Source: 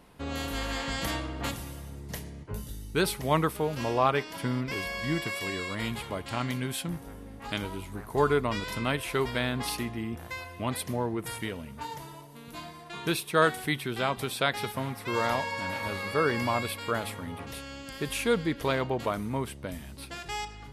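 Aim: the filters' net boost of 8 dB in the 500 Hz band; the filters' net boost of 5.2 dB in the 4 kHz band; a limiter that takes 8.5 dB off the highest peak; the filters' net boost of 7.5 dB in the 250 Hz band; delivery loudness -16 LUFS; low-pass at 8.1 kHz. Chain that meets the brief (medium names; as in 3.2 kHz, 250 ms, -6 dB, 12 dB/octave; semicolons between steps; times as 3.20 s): low-pass 8.1 kHz; peaking EQ 250 Hz +7 dB; peaking EQ 500 Hz +7.5 dB; peaking EQ 4 kHz +6.5 dB; trim +11 dB; peak limiter -2 dBFS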